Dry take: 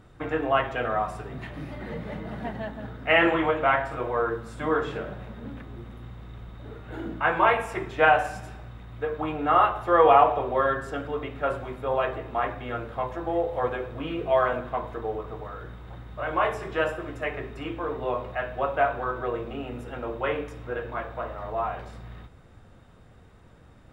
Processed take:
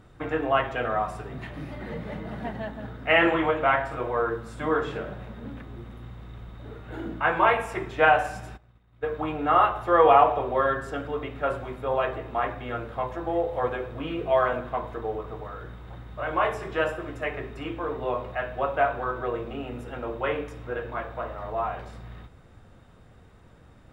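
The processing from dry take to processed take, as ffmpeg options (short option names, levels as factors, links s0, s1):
-filter_complex "[0:a]asplit=3[s0][s1][s2];[s0]afade=t=out:st=8.56:d=0.02[s3];[s1]agate=range=0.0224:threshold=0.0282:ratio=3:release=100:detection=peak,afade=t=in:st=8.56:d=0.02,afade=t=out:st=9.08:d=0.02[s4];[s2]afade=t=in:st=9.08:d=0.02[s5];[s3][s4][s5]amix=inputs=3:normalize=0"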